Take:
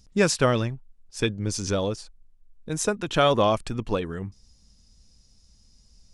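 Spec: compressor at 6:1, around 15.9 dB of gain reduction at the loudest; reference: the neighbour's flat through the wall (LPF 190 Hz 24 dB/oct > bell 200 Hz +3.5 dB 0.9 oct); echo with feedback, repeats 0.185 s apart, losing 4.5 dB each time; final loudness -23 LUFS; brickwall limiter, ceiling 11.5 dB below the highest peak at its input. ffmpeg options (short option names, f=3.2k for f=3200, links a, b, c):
-af "acompressor=threshold=-33dB:ratio=6,alimiter=level_in=5.5dB:limit=-24dB:level=0:latency=1,volume=-5.5dB,lowpass=f=190:w=0.5412,lowpass=f=190:w=1.3066,equalizer=f=200:t=o:w=0.9:g=3.5,aecho=1:1:185|370|555|740|925|1110|1295|1480|1665:0.596|0.357|0.214|0.129|0.0772|0.0463|0.0278|0.0167|0.01,volume=21.5dB"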